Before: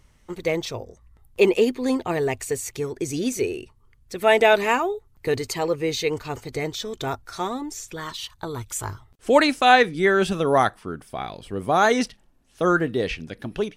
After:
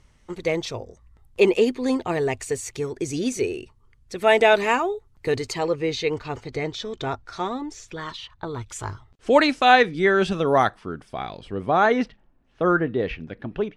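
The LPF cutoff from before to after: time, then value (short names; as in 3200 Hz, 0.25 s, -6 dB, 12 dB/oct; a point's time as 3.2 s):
5.32 s 8800 Hz
5.99 s 4700 Hz
8.12 s 4700 Hz
8.29 s 2300 Hz
8.75 s 5800 Hz
11.35 s 5800 Hz
11.96 s 2300 Hz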